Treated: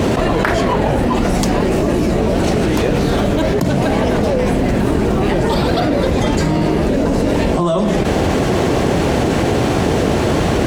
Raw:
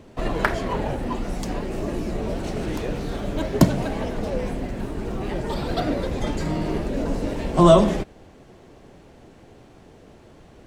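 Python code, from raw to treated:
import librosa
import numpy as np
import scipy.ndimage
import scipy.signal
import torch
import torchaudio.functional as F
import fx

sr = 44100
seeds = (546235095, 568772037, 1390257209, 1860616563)

y = scipy.signal.sosfilt(scipy.signal.butter(2, 52.0, 'highpass', fs=sr, output='sos'), x)
y = fx.env_flatten(y, sr, amount_pct=100)
y = y * librosa.db_to_amplitude(-5.5)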